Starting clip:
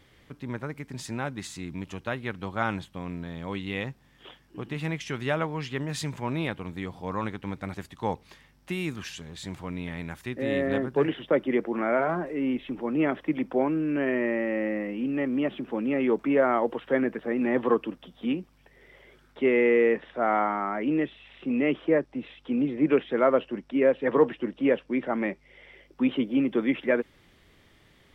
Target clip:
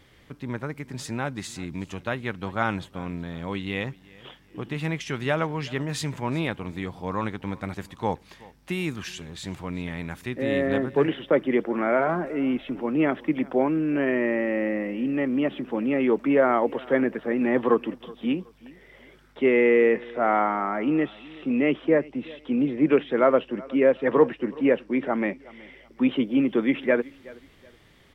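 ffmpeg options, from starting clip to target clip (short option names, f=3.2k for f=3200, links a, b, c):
-filter_complex "[0:a]asettb=1/sr,asplit=3[a][b][c];[a]atrim=end=24.274[d];[b]atrim=start=24.27:end=24.86,asetpts=PTS-STARTPTS,afade=t=in:d=0.004:c=qsin,afade=t=out:st=0.586:d=0.004:c=qsin,equalizer=f=3.3k:w=7.9:g=-8.5[e];[c]atrim=start=24.856[f];[d][e]acrossfade=d=0.004:c1=hsin:c2=qsin[g];[g][f]acrossfade=d=0.004:c1=qsin:c2=hsin,aecho=1:1:373|746:0.0794|0.0238,volume=2.5dB"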